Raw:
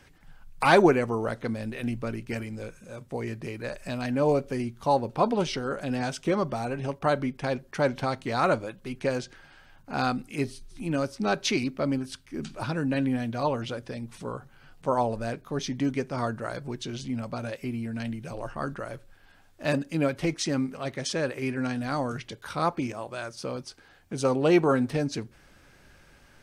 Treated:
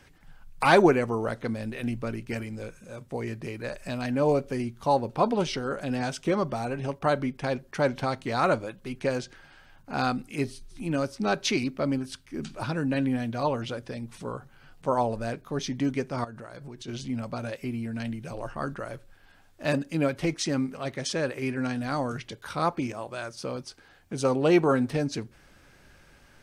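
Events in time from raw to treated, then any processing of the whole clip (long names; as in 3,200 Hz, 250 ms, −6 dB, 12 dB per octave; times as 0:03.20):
0:16.24–0:16.88: downward compressor 10 to 1, threshold −38 dBFS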